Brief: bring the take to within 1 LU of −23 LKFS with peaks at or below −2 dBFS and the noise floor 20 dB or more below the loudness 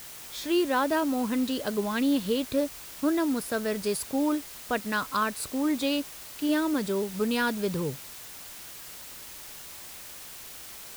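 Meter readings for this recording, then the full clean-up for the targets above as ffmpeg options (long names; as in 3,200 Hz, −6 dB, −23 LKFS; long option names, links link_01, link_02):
background noise floor −44 dBFS; target noise floor −49 dBFS; integrated loudness −28.5 LKFS; sample peak −14.5 dBFS; target loudness −23.0 LKFS
→ -af "afftdn=noise_reduction=6:noise_floor=-44"
-af "volume=5.5dB"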